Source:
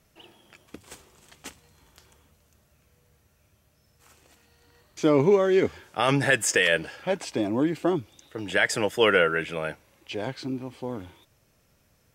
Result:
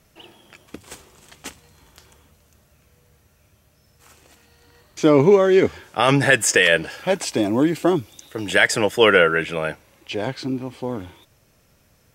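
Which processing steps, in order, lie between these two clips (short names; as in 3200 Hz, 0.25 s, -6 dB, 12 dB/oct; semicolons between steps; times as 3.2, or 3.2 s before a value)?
6.9–8.67 high shelf 5600 Hz +8.5 dB; gain +6 dB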